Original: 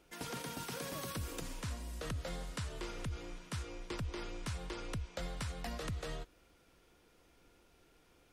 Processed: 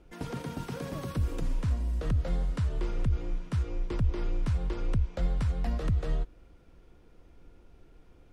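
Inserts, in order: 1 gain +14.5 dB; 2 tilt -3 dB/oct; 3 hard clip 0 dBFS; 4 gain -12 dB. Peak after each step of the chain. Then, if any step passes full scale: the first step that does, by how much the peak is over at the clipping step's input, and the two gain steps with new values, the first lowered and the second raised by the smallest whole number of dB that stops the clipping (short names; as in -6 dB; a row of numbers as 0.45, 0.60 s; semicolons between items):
-15.0, -4.5, -4.5, -16.5 dBFS; no overload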